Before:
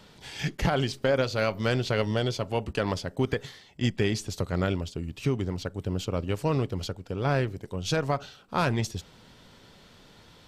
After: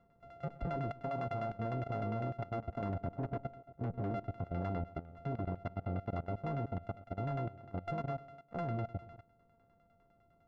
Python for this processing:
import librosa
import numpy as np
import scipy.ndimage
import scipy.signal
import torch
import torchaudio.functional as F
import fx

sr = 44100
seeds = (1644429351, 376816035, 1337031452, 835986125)

y = np.r_[np.sort(x[:len(x) // 64 * 64].reshape(-1, 64), axis=1).ravel(), x[len(x) // 64 * 64:]]
y = fx.spec_gate(y, sr, threshold_db=-25, keep='strong')
y = fx.tilt_shelf(y, sr, db=6.0, hz=1200.0, at=(2.89, 4.11))
y = fx.echo_feedback(y, sr, ms=119, feedback_pct=46, wet_db=-16.0)
y = 10.0 ** (-20.5 / 20.0) * np.tanh(y / 10.0 ** (-20.5 / 20.0))
y = fx.level_steps(y, sr, step_db=16)
y = fx.filter_lfo_lowpass(y, sr, shape='saw_down', hz=9.9, low_hz=610.0, high_hz=2000.0, q=0.72)
y = F.gain(torch.from_numpy(y), -3.5).numpy()